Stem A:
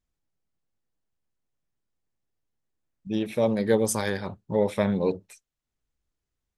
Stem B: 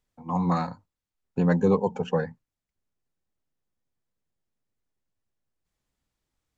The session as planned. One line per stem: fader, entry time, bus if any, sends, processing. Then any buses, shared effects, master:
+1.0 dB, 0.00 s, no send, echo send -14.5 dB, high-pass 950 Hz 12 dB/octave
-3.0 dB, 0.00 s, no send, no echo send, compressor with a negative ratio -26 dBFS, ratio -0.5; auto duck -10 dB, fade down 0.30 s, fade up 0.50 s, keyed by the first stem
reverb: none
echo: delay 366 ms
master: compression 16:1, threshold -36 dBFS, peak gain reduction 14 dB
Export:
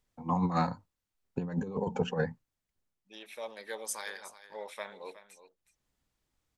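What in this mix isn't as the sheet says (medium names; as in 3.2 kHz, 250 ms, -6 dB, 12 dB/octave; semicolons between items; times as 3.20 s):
stem A +1.0 dB -> -7.5 dB; master: missing compression 16:1, threshold -36 dBFS, peak gain reduction 14 dB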